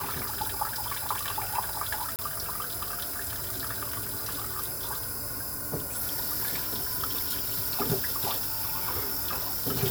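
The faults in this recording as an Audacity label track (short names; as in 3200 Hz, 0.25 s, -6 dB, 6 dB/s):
2.160000	2.190000	gap 28 ms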